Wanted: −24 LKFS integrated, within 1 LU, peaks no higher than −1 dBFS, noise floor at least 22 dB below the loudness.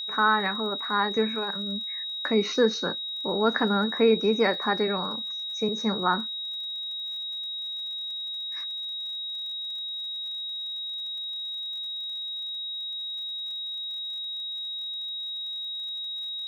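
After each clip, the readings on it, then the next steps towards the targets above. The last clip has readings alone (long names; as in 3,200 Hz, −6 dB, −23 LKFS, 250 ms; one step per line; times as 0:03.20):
crackle rate 54 per second; interfering tone 3,800 Hz; level of the tone −31 dBFS; integrated loudness −28.0 LKFS; sample peak −9.5 dBFS; target loudness −24.0 LKFS
→ click removal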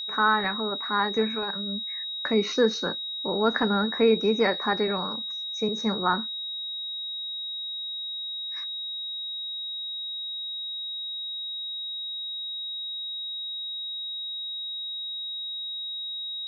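crackle rate 0 per second; interfering tone 3,800 Hz; level of the tone −31 dBFS
→ notch filter 3,800 Hz, Q 30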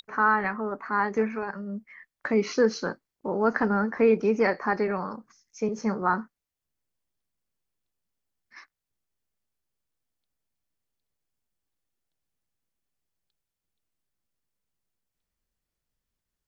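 interfering tone none found; integrated loudness −26.5 LKFS; sample peak −9.5 dBFS; target loudness −24.0 LKFS
→ level +2.5 dB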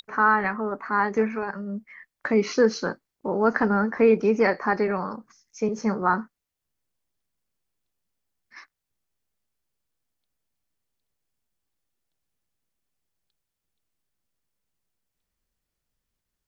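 integrated loudness −24.0 LKFS; sample peak −7.0 dBFS; background noise floor −84 dBFS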